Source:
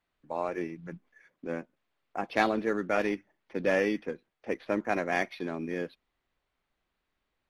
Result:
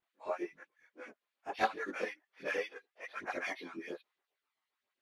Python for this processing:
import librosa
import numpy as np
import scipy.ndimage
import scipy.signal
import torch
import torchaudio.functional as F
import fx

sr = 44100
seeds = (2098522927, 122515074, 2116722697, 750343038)

y = fx.filter_lfo_highpass(x, sr, shape='saw_up', hz=5.0, low_hz=290.0, high_hz=4300.0, q=1.3)
y = fx.stretch_vocoder_free(y, sr, factor=0.67)
y = fx.vibrato(y, sr, rate_hz=0.77, depth_cents=12.0)
y = fx.chorus_voices(y, sr, voices=2, hz=0.61, base_ms=23, depth_ms=2.8, mix_pct=65)
y = y * librosa.db_to_amplitude(1.0)